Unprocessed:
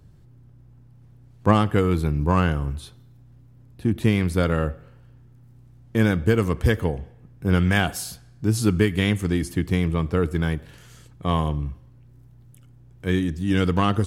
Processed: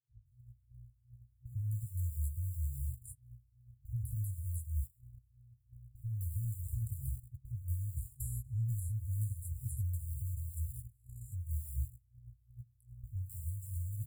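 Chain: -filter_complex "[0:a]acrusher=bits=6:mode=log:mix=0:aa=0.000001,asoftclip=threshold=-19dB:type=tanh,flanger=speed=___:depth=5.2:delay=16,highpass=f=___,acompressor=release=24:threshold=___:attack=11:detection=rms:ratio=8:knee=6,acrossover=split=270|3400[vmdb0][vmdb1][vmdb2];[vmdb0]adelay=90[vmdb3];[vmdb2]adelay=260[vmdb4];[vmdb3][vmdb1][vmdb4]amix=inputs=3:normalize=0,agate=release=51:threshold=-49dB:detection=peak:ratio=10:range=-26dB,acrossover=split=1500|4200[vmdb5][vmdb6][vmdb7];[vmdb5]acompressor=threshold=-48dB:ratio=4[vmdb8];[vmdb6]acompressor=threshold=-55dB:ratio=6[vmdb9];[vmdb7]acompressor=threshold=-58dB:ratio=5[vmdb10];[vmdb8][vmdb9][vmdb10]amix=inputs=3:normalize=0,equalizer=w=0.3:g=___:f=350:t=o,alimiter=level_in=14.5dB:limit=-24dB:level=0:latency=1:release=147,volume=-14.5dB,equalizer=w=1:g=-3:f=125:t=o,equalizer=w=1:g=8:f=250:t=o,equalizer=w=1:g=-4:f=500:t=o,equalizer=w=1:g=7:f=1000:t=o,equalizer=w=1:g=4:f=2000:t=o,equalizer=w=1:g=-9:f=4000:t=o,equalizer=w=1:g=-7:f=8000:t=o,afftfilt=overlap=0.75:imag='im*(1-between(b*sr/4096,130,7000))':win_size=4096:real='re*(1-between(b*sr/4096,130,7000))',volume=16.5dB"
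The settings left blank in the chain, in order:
2.8, 44, -32dB, 4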